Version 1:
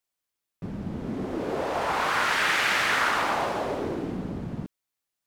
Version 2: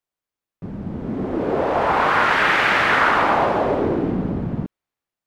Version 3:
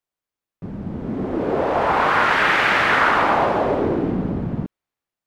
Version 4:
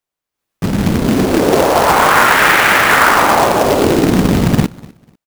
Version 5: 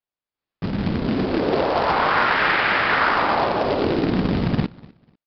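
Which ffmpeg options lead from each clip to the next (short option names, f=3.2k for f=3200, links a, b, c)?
-filter_complex "[0:a]highshelf=f=2.4k:g=-10,acrossover=split=4200[a][b];[a]dynaudnorm=f=510:g=5:m=8.5dB[c];[c][b]amix=inputs=2:normalize=0,volume=2dB"
-af anull
-af "dynaudnorm=f=190:g=5:m=14dB,aecho=1:1:247|494:0.075|0.0172,acrusher=bits=2:mode=log:mix=0:aa=0.000001,volume=2.5dB"
-af "aresample=11025,aresample=44100,volume=-9dB"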